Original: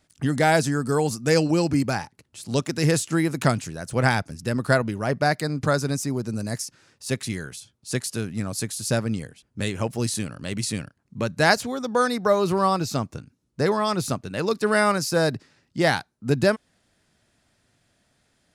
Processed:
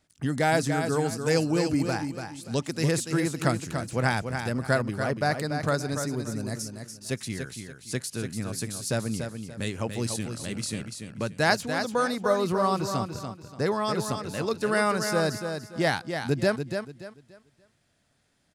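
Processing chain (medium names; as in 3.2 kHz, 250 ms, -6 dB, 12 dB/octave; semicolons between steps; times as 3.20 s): feedback delay 289 ms, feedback 29%, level -7 dB; trim -4.5 dB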